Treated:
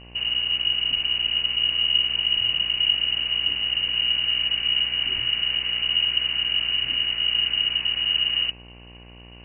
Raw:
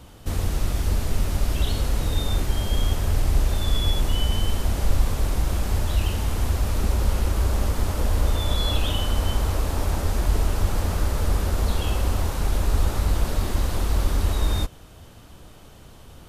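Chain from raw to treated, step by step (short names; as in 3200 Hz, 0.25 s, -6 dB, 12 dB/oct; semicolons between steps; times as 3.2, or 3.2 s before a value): de-hum 99.4 Hz, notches 28; time stretch by phase-locked vocoder 0.58×; inverted band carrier 2900 Hz; buzz 60 Hz, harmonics 19, -43 dBFS -5 dB/oct; gain -3 dB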